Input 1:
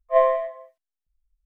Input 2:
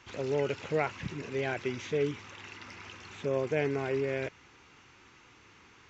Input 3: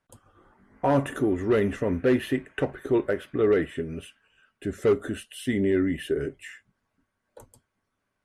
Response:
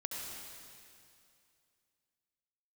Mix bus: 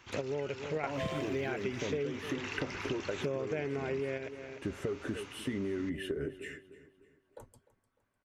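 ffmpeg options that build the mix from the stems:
-filter_complex "[0:a]aexciter=amount=15.5:drive=8.9:freq=2700,adelay=850,volume=0.473[s0];[1:a]acontrast=51,volume=1.06,asplit=2[s1][s2];[s2]volume=0.1[s3];[2:a]highshelf=f=4200:g=-7,volume=0.794,asplit=3[s4][s5][s6];[s5]volume=0.106[s7];[s6]apad=whole_len=259929[s8];[s1][s8]sidechaingate=range=0.398:threshold=0.00158:ratio=16:detection=peak[s9];[s0][s4]amix=inputs=2:normalize=0,acompressor=threshold=0.0398:ratio=6,volume=1[s10];[s3][s7]amix=inputs=2:normalize=0,aecho=0:1:301|602|903|1204|1505:1|0.37|0.137|0.0507|0.0187[s11];[s9][s10][s11]amix=inputs=3:normalize=0,acompressor=threshold=0.0282:ratio=12"

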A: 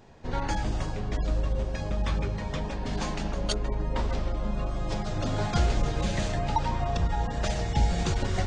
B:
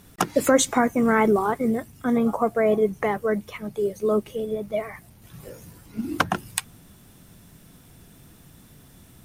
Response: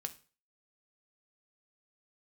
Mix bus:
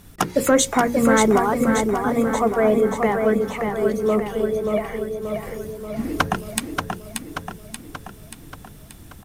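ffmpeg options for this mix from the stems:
-filter_complex "[0:a]adelay=400,volume=0.126[s0];[1:a]lowshelf=f=79:g=9,bandreject=f=60:t=h:w=6,bandreject=f=120:t=h:w=6,bandreject=f=180:t=h:w=6,bandreject=f=240:t=h:w=6,bandreject=f=300:t=h:w=6,bandreject=f=360:t=h:w=6,bandreject=f=420:t=h:w=6,bandreject=f=480:t=h:w=6,bandreject=f=540:t=h:w=6,asoftclip=type=tanh:threshold=0.473,volume=1.33,asplit=3[s1][s2][s3];[s2]volume=0.562[s4];[s3]apad=whole_len=391166[s5];[s0][s5]sidechaingate=range=0.0224:threshold=0.0112:ratio=16:detection=peak[s6];[s4]aecho=0:1:582|1164|1746|2328|2910|3492|4074|4656:1|0.55|0.303|0.166|0.0915|0.0503|0.0277|0.0152[s7];[s6][s1][s7]amix=inputs=3:normalize=0"

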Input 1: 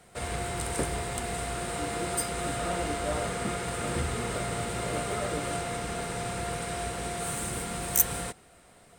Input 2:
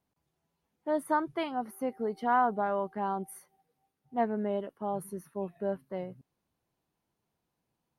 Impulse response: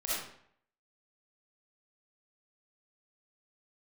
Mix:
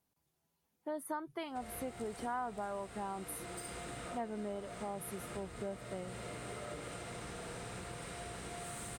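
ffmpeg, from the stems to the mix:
-filter_complex "[0:a]highshelf=f=11000:g=-4.5,acompressor=threshold=0.02:ratio=6,adelay=1400,volume=0.299,asplit=2[s0][s1];[s1]volume=0.631[s2];[1:a]aemphasis=mode=production:type=cd,volume=0.75,asplit=2[s3][s4];[s4]apad=whole_len=457823[s5];[s0][s5]sidechaincompress=threshold=0.0158:ratio=8:attack=16:release=885[s6];[2:a]atrim=start_sample=2205[s7];[s2][s7]afir=irnorm=-1:irlink=0[s8];[s6][s3][s8]amix=inputs=3:normalize=0,acompressor=threshold=0.01:ratio=2.5"

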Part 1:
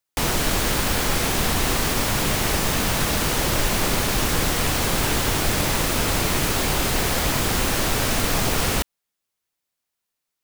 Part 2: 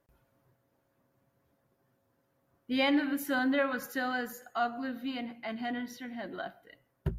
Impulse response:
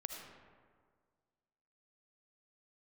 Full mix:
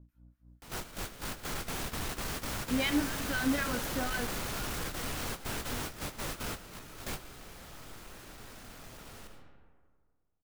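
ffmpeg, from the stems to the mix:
-filter_complex "[0:a]asoftclip=type=tanh:threshold=0.119,adelay=450,volume=0.2,asplit=2[s0][s1];[s1]volume=0.316[s2];[1:a]aeval=exprs='val(0)+0.00562*(sin(2*PI*60*n/s)+sin(2*PI*2*60*n/s)/2+sin(2*PI*3*60*n/s)/3+sin(2*PI*4*60*n/s)/4+sin(2*PI*5*60*n/s)/5)':c=same,acrossover=split=1300[s3][s4];[s3]aeval=exprs='val(0)*(1-1/2+1/2*cos(2*PI*4*n/s))':c=same[s5];[s4]aeval=exprs='val(0)*(1-1/2-1/2*cos(2*PI*4*n/s))':c=same[s6];[s5][s6]amix=inputs=2:normalize=0,volume=0.944,afade=t=in:st=1.23:d=0.43:silence=0.375837,afade=t=out:st=4.21:d=0.39:silence=0.251189,asplit=3[s7][s8][s9];[s8]volume=0.188[s10];[s9]apad=whole_len=479911[s11];[s0][s11]sidechaingate=range=0.0224:threshold=0.00141:ratio=16:detection=peak[s12];[2:a]atrim=start_sample=2205[s13];[s2][s10]amix=inputs=2:normalize=0[s14];[s14][s13]afir=irnorm=-1:irlink=0[s15];[s12][s7][s15]amix=inputs=3:normalize=0,equalizer=f=1400:w=3.7:g=3"

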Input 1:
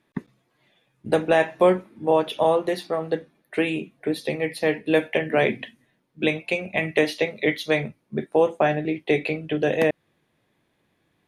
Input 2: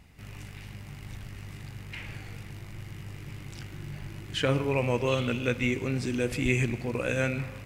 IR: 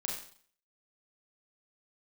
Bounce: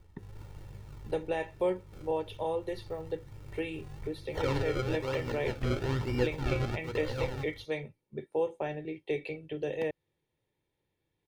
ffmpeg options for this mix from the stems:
-filter_complex "[0:a]equalizer=f=1400:t=o:w=0.66:g=-7,volume=0.2,asplit=2[s0][s1];[1:a]acrusher=samples=33:mix=1:aa=0.000001:lfo=1:lforange=33:lforate=1.1,flanger=delay=8.8:depth=9.5:regen=63:speed=0.42:shape=triangular,agate=range=0.501:threshold=0.0158:ratio=16:detection=peak,volume=1.26[s2];[s1]apad=whole_len=337611[s3];[s2][s3]sidechaincompress=threshold=0.0141:ratio=5:attack=7.6:release=576[s4];[s0][s4]amix=inputs=2:normalize=0,acrossover=split=5500[s5][s6];[s6]acompressor=threshold=0.00112:ratio=4:attack=1:release=60[s7];[s5][s7]amix=inputs=2:normalize=0,lowshelf=f=110:g=7.5,aecho=1:1:2.2:0.51"

